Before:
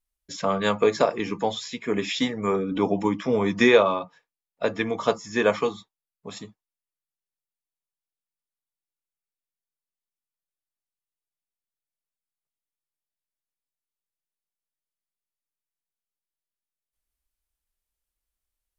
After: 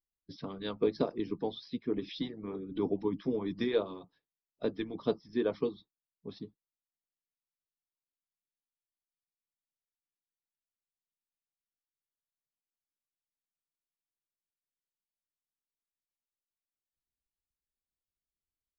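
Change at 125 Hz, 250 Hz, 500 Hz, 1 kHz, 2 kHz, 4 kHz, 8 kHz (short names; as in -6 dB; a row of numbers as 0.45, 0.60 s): -10.0 dB, -8.5 dB, -11.0 dB, -18.0 dB, -20.5 dB, -13.5 dB, n/a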